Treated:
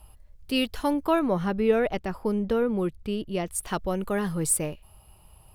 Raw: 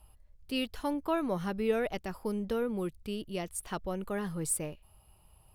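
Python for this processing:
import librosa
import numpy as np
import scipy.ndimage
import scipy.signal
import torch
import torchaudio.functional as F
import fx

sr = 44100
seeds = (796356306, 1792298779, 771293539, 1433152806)

y = fx.high_shelf(x, sr, hz=4100.0, db=-10.5, at=(1.19, 3.49))
y = y * 10.0 ** (7.5 / 20.0)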